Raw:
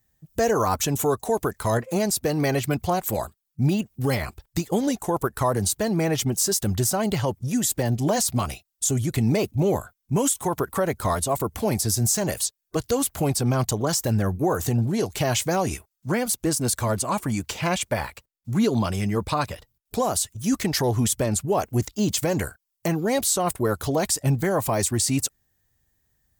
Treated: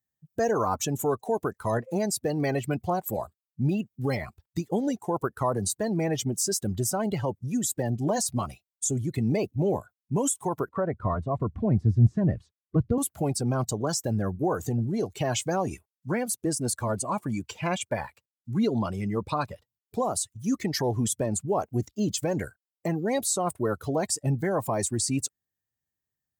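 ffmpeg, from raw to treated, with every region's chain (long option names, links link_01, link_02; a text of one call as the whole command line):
ffmpeg -i in.wav -filter_complex "[0:a]asettb=1/sr,asplit=3[link_01][link_02][link_03];[link_01]atrim=end=10.694[link_04];[link_02]atrim=start=10.69:end=12.98,asetpts=PTS-STARTPTS,afade=type=in:duration=0.004:curve=qsin,afade=type=out:start_time=2.286:duration=0.004:curve=qsin,lowpass=1800,bandreject=frequency=850:width=10,asubboost=boost=10:cutoff=210[link_05];[link_03]atrim=start=12.976[link_06];[link_04][link_05]acrossfade=duration=0.004:curve1=hsin:curve2=qsin[link_07];[link_07][link_06]acrossfade=duration=0.004:curve1=qsin:curve2=hsin,afftdn=noise_reduction=14:noise_floor=-30,highpass=100,volume=-3.5dB" out.wav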